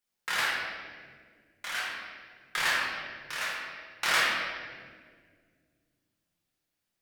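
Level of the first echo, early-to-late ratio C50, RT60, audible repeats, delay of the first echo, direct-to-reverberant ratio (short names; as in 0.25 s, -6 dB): none, -1.5 dB, 1.8 s, none, none, -7.0 dB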